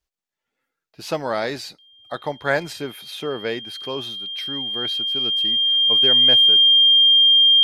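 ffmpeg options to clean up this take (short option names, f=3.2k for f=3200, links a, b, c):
-af "bandreject=f=3.2k:w=30"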